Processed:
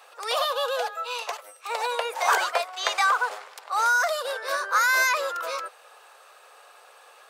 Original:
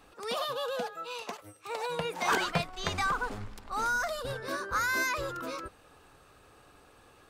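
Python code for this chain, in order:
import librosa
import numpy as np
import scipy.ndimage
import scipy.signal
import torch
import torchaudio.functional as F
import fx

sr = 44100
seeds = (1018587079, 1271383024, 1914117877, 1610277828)

y = scipy.signal.sosfilt(scipy.signal.butter(6, 510.0, 'highpass', fs=sr, output='sos'), x)
y = fx.dynamic_eq(y, sr, hz=3000.0, q=0.77, threshold_db=-43.0, ratio=4.0, max_db=-6, at=(2.0, 2.67))
y = y * librosa.db_to_amplitude(8.5)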